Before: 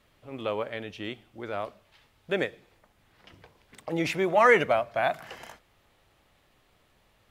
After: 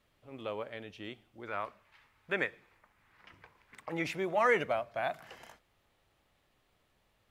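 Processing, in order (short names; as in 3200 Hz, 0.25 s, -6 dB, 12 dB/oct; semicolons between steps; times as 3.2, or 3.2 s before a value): 1.47–4.04 band shelf 1500 Hz +8.5 dB; gain -8 dB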